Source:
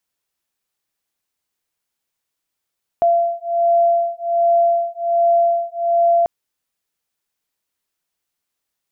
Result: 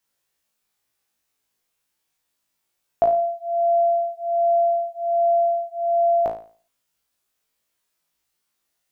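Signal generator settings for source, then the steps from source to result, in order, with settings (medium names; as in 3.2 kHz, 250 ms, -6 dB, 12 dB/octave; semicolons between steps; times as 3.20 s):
beating tones 683 Hz, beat 1.3 Hz, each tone -16.5 dBFS 3.24 s
flutter echo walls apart 3.1 m, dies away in 0.42 s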